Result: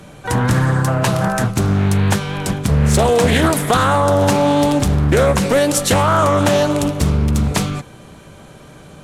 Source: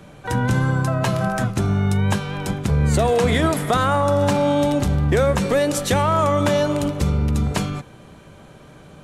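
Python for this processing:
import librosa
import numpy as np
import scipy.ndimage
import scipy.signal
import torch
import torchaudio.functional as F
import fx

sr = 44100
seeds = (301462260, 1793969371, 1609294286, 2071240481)

y = fx.peak_eq(x, sr, hz=11000.0, db=6.5, octaves=1.8)
y = fx.doppler_dist(y, sr, depth_ms=0.48)
y = y * 10.0 ** (4.0 / 20.0)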